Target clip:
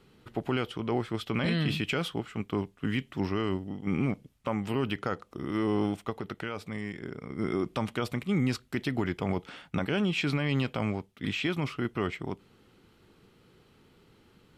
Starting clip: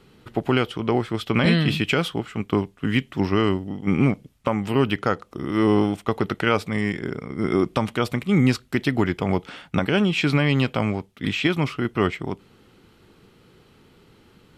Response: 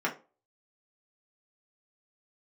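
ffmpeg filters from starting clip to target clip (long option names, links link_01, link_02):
-filter_complex "[0:a]alimiter=limit=-12.5dB:level=0:latency=1:release=22,asettb=1/sr,asplit=3[link_01][link_02][link_03];[link_01]atrim=end=6.104[link_04];[link_02]atrim=start=6.1:end=7.23,asetpts=PTS-STARTPTS,afade=type=in:duration=0.004:curve=qsin,afade=type=out:start_time=1.126:duration=0.004:curve=qsin,acompressor=threshold=-30dB:ratio=2[link_05];[link_03]atrim=start=7.226[link_06];[link_04][link_05]acrossfade=duration=0.004:curve1=hsin:curve2=qsin[link_07];[link_07][link_06]acrossfade=duration=0.004:curve1=qsin:curve2=hsin,volume=-6.5dB"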